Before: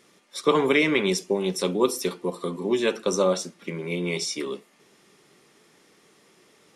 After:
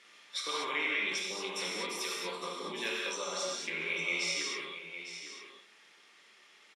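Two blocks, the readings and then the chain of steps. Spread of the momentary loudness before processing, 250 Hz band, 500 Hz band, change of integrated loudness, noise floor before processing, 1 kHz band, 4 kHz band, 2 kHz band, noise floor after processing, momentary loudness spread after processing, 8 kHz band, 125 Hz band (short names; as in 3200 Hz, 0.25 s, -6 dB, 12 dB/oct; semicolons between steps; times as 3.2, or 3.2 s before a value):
13 LU, -19.5 dB, -17.0 dB, -9.5 dB, -60 dBFS, -8.5 dB, -3.0 dB, -3.0 dB, -61 dBFS, 11 LU, -5.5 dB, -21.5 dB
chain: compressor, threshold -22 dBFS, peak gain reduction 8 dB; limiter -20 dBFS, peak gain reduction 7 dB; vocal rider within 4 dB 0.5 s; band-pass 2500 Hz, Q 0.99; on a send: echo 0.857 s -11 dB; on the sum: non-linear reverb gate 0.26 s flat, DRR -3 dB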